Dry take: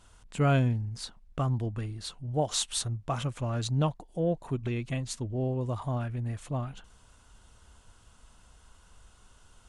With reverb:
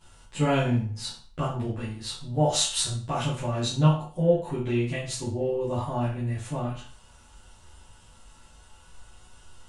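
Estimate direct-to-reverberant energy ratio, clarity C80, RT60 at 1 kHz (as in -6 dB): -11.0 dB, 10.5 dB, 0.40 s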